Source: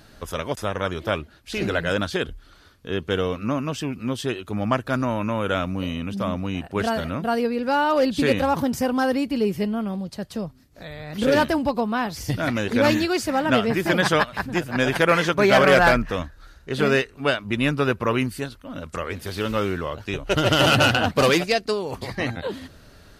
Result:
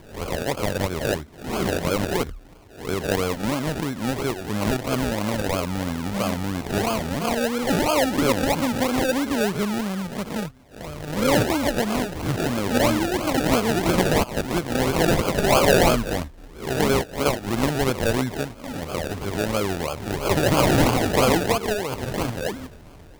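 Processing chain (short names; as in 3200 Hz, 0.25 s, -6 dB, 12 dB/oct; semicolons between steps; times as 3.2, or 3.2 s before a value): spectral swells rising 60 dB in 0.44 s; 15.16–15.68 HPF 430 Hz 12 dB/oct; in parallel at -1 dB: compressor, threshold -27 dBFS, peak gain reduction 15.5 dB; on the sum: decimation with a swept rate 33×, swing 60% 3 Hz; gain -3.5 dB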